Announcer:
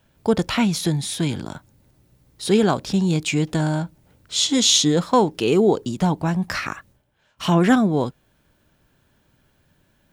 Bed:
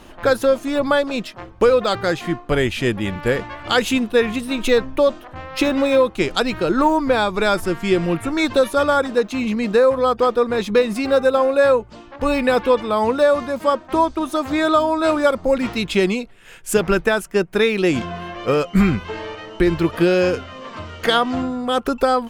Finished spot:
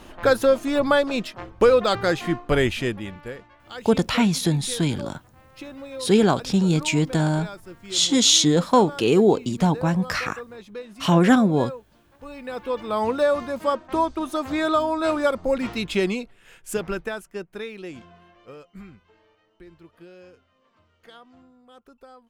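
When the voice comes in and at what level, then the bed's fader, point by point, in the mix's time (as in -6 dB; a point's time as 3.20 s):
3.60 s, 0.0 dB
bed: 2.69 s -1.5 dB
3.48 s -20.5 dB
12.33 s -20.5 dB
12.96 s -5 dB
16.24 s -5 dB
19.18 s -30.5 dB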